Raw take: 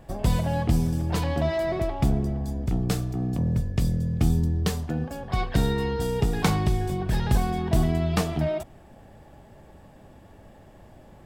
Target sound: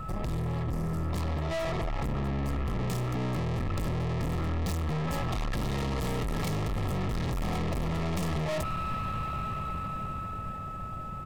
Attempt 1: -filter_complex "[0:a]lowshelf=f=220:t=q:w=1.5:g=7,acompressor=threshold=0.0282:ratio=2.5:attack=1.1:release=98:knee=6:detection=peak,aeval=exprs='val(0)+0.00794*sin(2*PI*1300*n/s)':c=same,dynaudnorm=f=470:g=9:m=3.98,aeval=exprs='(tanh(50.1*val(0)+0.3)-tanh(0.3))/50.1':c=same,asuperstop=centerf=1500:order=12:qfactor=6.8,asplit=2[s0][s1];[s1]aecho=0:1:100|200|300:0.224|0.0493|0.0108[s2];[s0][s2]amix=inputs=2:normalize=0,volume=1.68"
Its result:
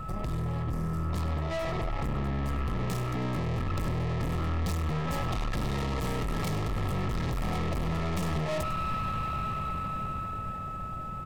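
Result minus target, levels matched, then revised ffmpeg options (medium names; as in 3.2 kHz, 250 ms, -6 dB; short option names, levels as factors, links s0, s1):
echo-to-direct +10 dB; compression: peak gain reduction +4 dB
-filter_complex "[0:a]lowshelf=f=220:t=q:w=1.5:g=7,acompressor=threshold=0.0596:ratio=2.5:attack=1.1:release=98:knee=6:detection=peak,aeval=exprs='val(0)+0.00794*sin(2*PI*1300*n/s)':c=same,dynaudnorm=f=470:g=9:m=3.98,aeval=exprs='(tanh(50.1*val(0)+0.3)-tanh(0.3))/50.1':c=same,asuperstop=centerf=1500:order=12:qfactor=6.8,asplit=2[s0][s1];[s1]aecho=0:1:100|200:0.0708|0.0156[s2];[s0][s2]amix=inputs=2:normalize=0,volume=1.68"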